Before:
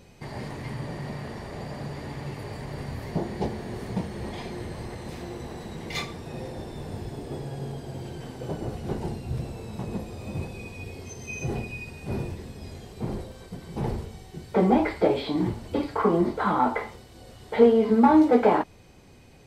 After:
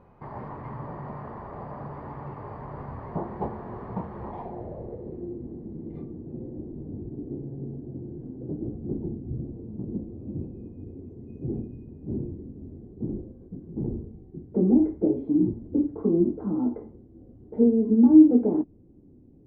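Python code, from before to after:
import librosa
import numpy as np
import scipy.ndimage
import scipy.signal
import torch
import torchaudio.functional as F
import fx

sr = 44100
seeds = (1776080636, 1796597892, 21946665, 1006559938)

y = fx.filter_sweep_lowpass(x, sr, from_hz=1100.0, to_hz=300.0, start_s=4.22, end_s=5.37, q=3.1)
y = y * librosa.db_to_amplitude(-4.0)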